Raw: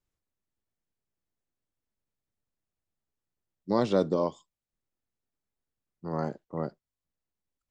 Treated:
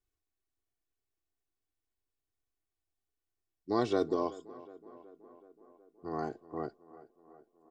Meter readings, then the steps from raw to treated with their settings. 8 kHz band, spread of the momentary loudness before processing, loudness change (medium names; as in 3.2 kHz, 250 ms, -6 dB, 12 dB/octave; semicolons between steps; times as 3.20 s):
no reading, 13 LU, -4.5 dB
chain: comb 2.7 ms, depth 76%; on a send: tape echo 373 ms, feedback 71%, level -17 dB, low-pass 2.1 kHz; on the sum: trim -5 dB